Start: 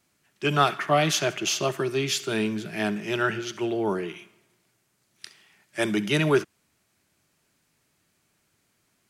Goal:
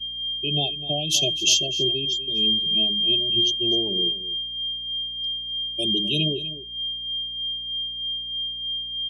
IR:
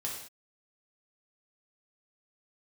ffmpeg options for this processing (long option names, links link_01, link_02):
-filter_complex "[0:a]asuperstop=centerf=1500:order=12:qfactor=0.86,bandreject=frequency=106:width_type=h:width=4,bandreject=frequency=212:width_type=h:width=4,bandreject=frequency=318:width_type=h:width=4,bandreject=frequency=424:width_type=h:width=4,asplit=3[link_01][link_02][link_03];[link_01]afade=type=out:start_time=2.04:duration=0.02[link_04];[link_02]acompressor=threshold=-32dB:ratio=3,afade=type=in:start_time=2.04:duration=0.02,afade=type=out:start_time=3.34:duration=0.02[link_05];[link_03]afade=type=in:start_time=3.34:duration=0.02[link_06];[link_04][link_05][link_06]amix=inputs=3:normalize=0,equalizer=frequency=3200:width=0.32:gain=-12,aeval=exprs='val(0)+0.0126*sin(2*PI*3200*n/s)':channel_layout=same,alimiter=limit=-22dB:level=0:latency=1:release=430,agate=range=-33dB:threshold=-35dB:ratio=3:detection=peak,highshelf=frequency=1800:width_type=q:width=1.5:gain=13.5,afftdn=noise_reduction=34:noise_floor=-31,tremolo=f=3.2:d=0.5,asplit=2[link_07][link_08];[link_08]adelay=250.7,volume=-14dB,highshelf=frequency=4000:gain=-5.64[link_09];[link_07][link_09]amix=inputs=2:normalize=0,aeval=exprs='val(0)+0.00158*(sin(2*PI*60*n/s)+sin(2*PI*2*60*n/s)/2+sin(2*PI*3*60*n/s)/3+sin(2*PI*4*60*n/s)/4+sin(2*PI*5*60*n/s)/5)':channel_layout=same,volume=5dB"